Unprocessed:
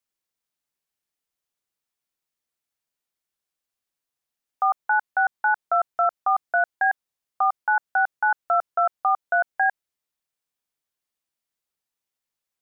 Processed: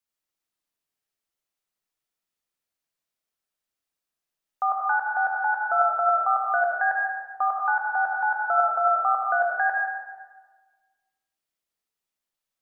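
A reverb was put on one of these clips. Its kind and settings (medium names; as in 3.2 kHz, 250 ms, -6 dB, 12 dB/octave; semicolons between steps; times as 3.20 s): algorithmic reverb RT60 1.4 s, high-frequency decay 0.7×, pre-delay 35 ms, DRR -1.5 dB; trim -3.5 dB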